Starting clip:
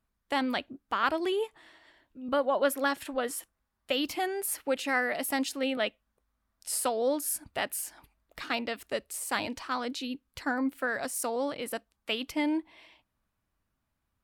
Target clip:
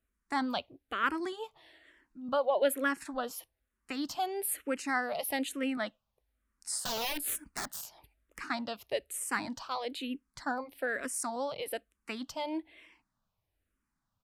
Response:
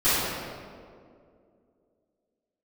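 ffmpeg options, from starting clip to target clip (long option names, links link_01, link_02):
-filter_complex "[0:a]aresample=32000,aresample=44100,asettb=1/sr,asplit=3[link_01][link_02][link_03];[link_01]atrim=end=6.834[link_04];[link_02]atrim=start=6.83:end=8.39,asetpts=PTS-STARTPTS,afade=type=in:duration=0.004:curve=qsin,afade=type=out:start_time=1.556:duration=0.004:curve=qsin,aeval=exprs='(mod(20*val(0)+1,2)-1)/20':channel_layout=same[link_05];[link_03]atrim=start=8.386[link_06];[link_04][link_05]acrossfade=duration=0.004:curve1=hsin:curve2=qsin[link_07];[link_07][link_06]acrossfade=duration=0.004:curve1=qsin:curve2=hsin,asplit=2[link_08][link_09];[link_09]afreqshift=-1.1[link_10];[link_08][link_10]amix=inputs=2:normalize=1"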